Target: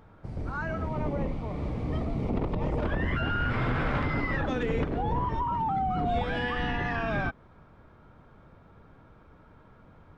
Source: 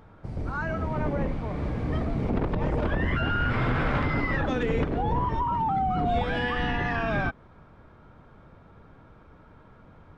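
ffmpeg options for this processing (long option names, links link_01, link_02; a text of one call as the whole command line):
ffmpeg -i in.wav -filter_complex "[0:a]asettb=1/sr,asplit=3[link_01][link_02][link_03];[link_01]atrim=end=0.894[link_04];[link_02]atrim=start=0.89:end=2.78,asetpts=PTS-STARTPTS,afade=type=in:duration=0.004:curve=qsin,afade=type=out:start_time=1.886:duration=0.004:curve=qsin,equalizer=frequency=1600:width_type=o:width=0.31:gain=-10.5[link_05];[link_03]atrim=start=2.776[link_06];[link_04][link_05]acrossfade=duration=0.004:curve1=hsin:curve2=qsin[link_07];[link_07][link_06]acrossfade=duration=0.004:curve1=qsin:curve2=hsin,volume=-2.5dB" out.wav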